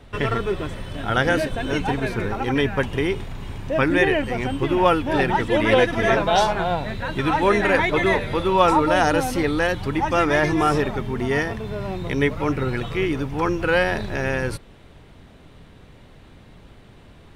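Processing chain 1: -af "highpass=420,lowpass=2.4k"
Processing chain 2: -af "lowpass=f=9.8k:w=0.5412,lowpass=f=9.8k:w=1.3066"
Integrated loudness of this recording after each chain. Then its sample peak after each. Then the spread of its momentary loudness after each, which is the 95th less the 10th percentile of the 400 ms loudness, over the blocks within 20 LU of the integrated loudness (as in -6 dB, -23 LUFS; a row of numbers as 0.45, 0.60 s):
-23.5, -21.5 LUFS; -4.0, -2.5 dBFS; 10, 9 LU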